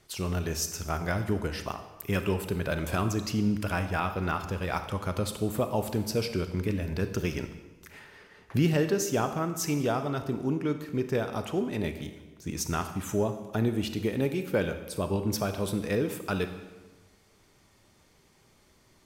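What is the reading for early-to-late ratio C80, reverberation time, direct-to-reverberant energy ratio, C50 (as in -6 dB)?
11.0 dB, 1.3 s, 8.0 dB, 9.5 dB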